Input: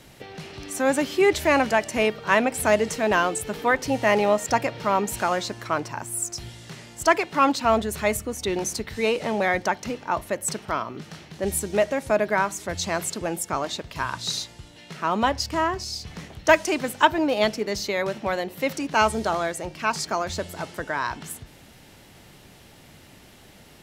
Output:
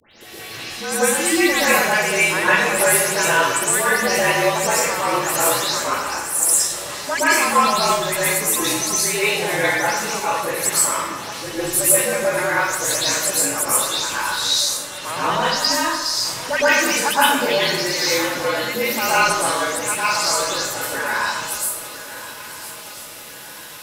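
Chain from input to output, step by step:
every frequency bin delayed by itself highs late, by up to 211 ms
spectral tilt +4 dB per octave
in parallel at −1 dB: downward compressor, threshold −32 dBFS, peak gain reduction 20.5 dB
on the sum: frequency shifter −52 Hz
mains-hum notches 60/120/180 Hz
on a send: feedback echo with a long and a short gap by turns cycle 1,346 ms, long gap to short 3 to 1, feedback 44%, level −15 dB
on the sum: dense smooth reverb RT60 1.1 s, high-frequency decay 0.55×, pre-delay 100 ms, DRR −9 dB
level −6.5 dB

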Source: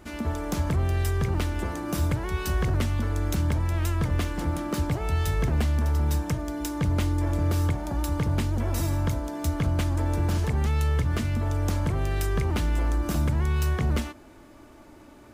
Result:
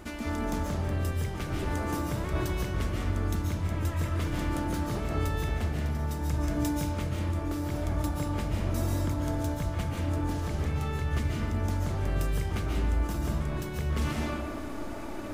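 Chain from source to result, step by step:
reversed playback
downward compressor 8 to 1, threshold −38 dBFS, peak gain reduction 17 dB
reversed playback
comb and all-pass reverb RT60 1.7 s, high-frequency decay 0.5×, pre-delay 100 ms, DRR −3 dB
level +7 dB

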